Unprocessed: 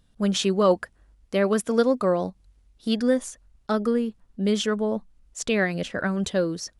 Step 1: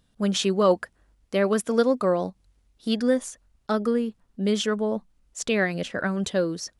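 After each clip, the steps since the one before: bass shelf 76 Hz -8 dB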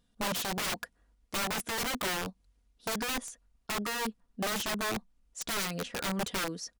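comb 4.2 ms, depth 43%; integer overflow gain 20.5 dB; trim -7 dB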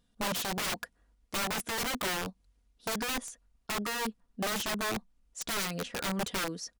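no audible change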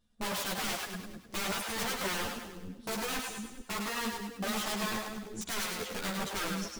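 two-band feedback delay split 420 Hz, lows 421 ms, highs 102 ms, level -3.5 dB; three-phase chorus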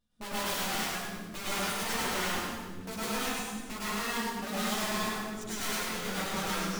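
plate-style reverb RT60 0.96 s, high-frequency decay 0.75×, pre-delay 90 ms, DRR -8 dB; trim -6 dB

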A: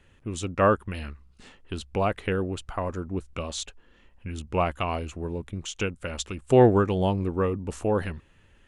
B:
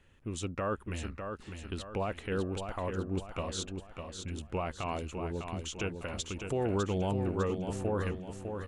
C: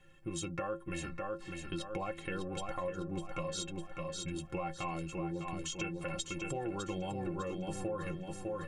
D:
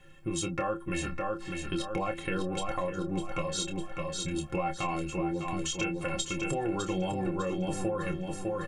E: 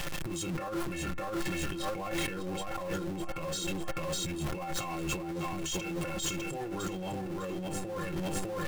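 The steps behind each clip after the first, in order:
peak limiter -18.5 dBFS, peak gain reduction 11.5 dB; on a send: feedback delay 603 ms, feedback 42%, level -6.5 dB; on the sum: trim -5 dB
inharmonic resonator 160 Hz, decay 0.21 s, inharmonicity 0.03; compression, threshold -47 dBFS, peak gain reduction 9.5 dB; trim +12.5 dB
doubling 27 ms -8 dB; trim +6 dB
jump at every zero crossing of -34.5 dBFS; compressor with a negative ratio -35 dBFS, ratio -1

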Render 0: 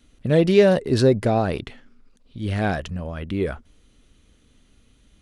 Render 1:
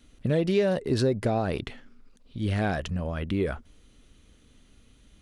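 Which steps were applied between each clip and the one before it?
compression 3:1, threshold -23 dBFS, peak gain reduction 10.5 dB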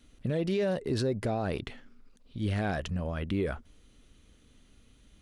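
peak limiter -18.5 dBFS, peak gain reduction 5.5 dB; trim -2.5 dB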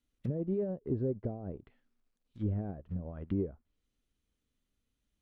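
companded quantiser 6-bit; low-pass that closes with the level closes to 480 Hz, closed at -27.5 dBFS; upward expansion 2.5:1, over -43 dBFS

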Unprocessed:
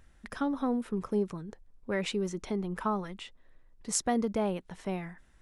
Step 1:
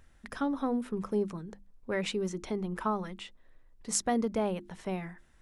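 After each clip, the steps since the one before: hum notches 50/100/150/200/250/300/350 Hz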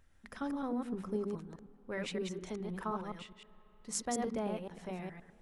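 chunks repeated in reverse 104 ms, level -3 dB; on a send at -21 dB: reverberation RT60 5.0 s, pre-delay 37 ms; on the sum: trim -7.5 dB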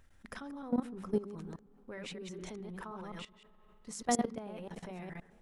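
level held to a coarse grid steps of 17 dB; trim +7 dB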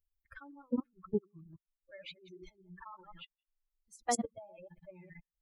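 expander on every frequency bin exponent 3; trim +2.5 dB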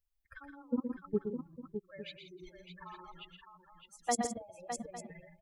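hard clipper -20 dBFS, distortion -44 dB; multi-tap echo 119/165/609/854 ms -7/-13.5/-8/-15.5 dB

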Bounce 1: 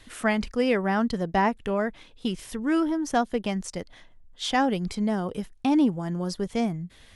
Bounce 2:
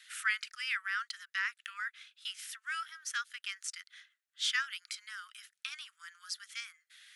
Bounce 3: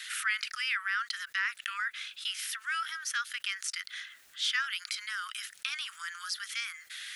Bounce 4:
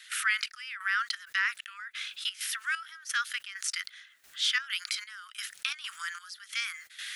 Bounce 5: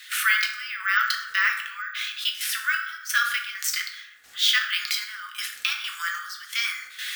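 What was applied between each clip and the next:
steep high-pass 1.3 kHz 72 dB/octave; trim -1.5 dB
dynamic bell 7.5 kHz, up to -5 dB, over -56 dBFS, Q 1.9; level flattener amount 50%
trance gate ".xxx...xxx" 131 bpm -12 dB; trim +3 dB
reverberation RT60 0.85 s, pre-delay 3 ms, DRR 0 dB; careless resampling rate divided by 2×, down filtered, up hold; trim +5.5 dB

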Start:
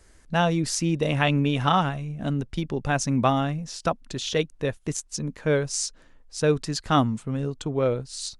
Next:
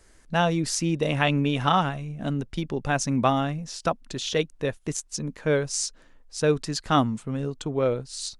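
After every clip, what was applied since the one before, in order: peaking EQ 71 Hz -4.5 dB 1.8 oct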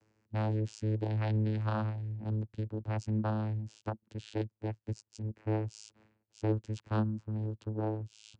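reverse; upward compressor, threshold -32 dBFS; reverse; vocoder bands 8, saw 108 Hz; trim -7.5 dB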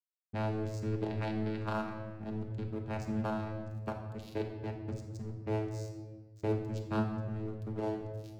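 crossover distortion -46.5 dBFS; simulated room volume 1100 m³, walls mixed, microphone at 1.3 m

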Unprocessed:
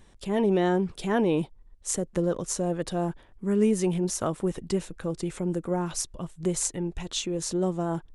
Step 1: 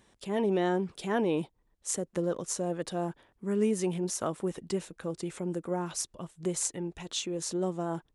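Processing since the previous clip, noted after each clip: high-pass 190 Hz 6 dB/octave; trim -3 dB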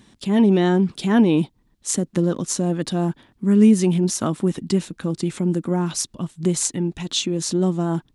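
graphic EQ 125/250/500/4000 Hz +6/+10/-6/+5 dB; trim +7.5 dB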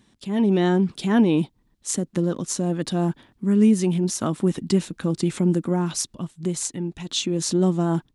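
level rider; trim -7.5 dB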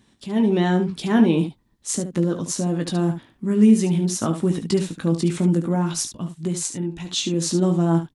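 early reflections 18 ms -7 dB, 72 ms -9 dB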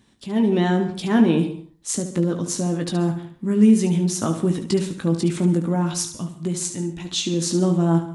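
reverberation RT60 0.40 s, pre-delay 122 ms, DRR 14 dB

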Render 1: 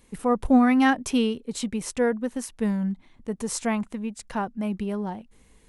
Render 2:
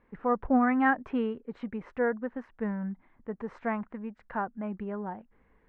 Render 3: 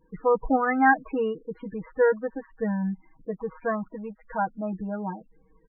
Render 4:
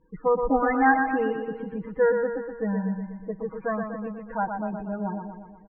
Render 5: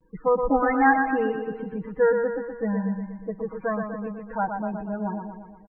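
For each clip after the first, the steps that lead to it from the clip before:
Chebyshev low-pass 1.7 kHz, order 3; bass shelf 410 Hz -9.5 dB
comb 6.3 ms, depth 90%; loudest bins only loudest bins 16; trim +3 dB
distance through air 210 m; on a send: feedback delay 121 ms, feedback 56%, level -6 dB
vibrato 0.43 Hz 32 cents; trim +1 dB

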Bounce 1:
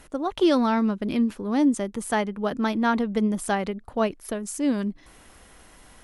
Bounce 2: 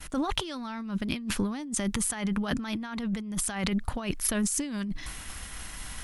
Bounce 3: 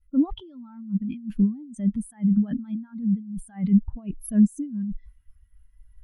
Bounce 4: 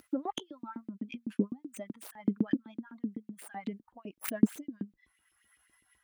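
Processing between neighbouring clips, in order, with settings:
expander -47 dBFS; peaking EQ 460 Hz -14 dB 2.1 oct; compressor with a negative ratio -40 dBFS, ratio -1; trim +8.5 dB
spectral contrast expander 2.5:1; trim +2 dB
tracing distortion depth 0.29 ms; upward compressor, threshold -30 dBFS; LFO high-pass saw up 7.9 Hz 280–3100 Hz

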